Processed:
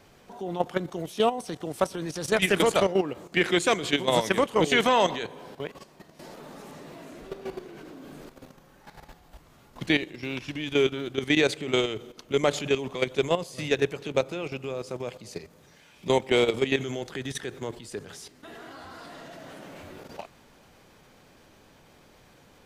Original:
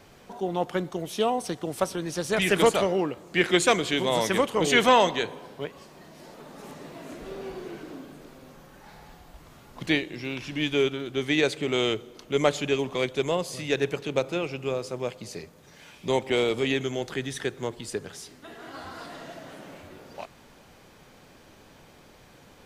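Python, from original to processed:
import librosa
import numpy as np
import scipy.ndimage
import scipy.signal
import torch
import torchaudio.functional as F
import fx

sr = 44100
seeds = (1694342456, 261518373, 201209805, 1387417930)

y = fx.level_steps(x, sr, step_db=12)
y = y * 10.0 ** (4.0 / 20.0)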